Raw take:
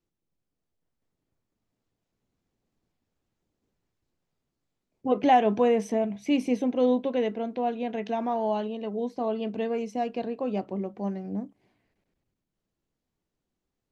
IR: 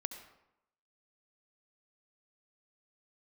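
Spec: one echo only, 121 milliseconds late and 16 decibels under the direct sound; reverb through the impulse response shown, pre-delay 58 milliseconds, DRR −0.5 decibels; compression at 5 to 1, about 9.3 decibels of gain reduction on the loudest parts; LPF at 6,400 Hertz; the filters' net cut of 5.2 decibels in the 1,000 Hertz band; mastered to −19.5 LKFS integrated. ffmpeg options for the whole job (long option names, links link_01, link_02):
-filter_complex "[0:a]lowpass=6400,equalizer=frequency=1000:width_type=o:gain=-8.5,acompressor=threshold=-30dB:ratio=5,aecho=1:1:121:0.158,asplit=2[link_01][link_02];[1:a]atrim=start_sample=2205,adelay=58[link_03];[link_02][link_03]afir=irnorm=-1:irlink=0,volume=1dB[link_04];[link_01][link_04]amix=inputs=2:normalize=0,volume=12dB"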